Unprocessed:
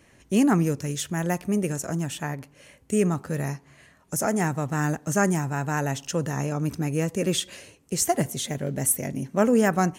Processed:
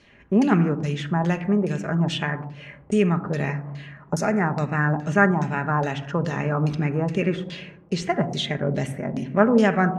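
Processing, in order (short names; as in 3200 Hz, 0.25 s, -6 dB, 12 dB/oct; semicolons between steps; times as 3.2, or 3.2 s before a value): recorder AGC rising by 6.6 dB/s; 7.45–8.1 high shelf 10000 Hz -11.5 dB; shoebox room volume 3500 m³, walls furnished, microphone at 1.3 m; LFO low-pass saw down 2.4 Hz 810–4700 Hz; 4.19–4.82 Butterworth band-stop 3200 Hz, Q 3.7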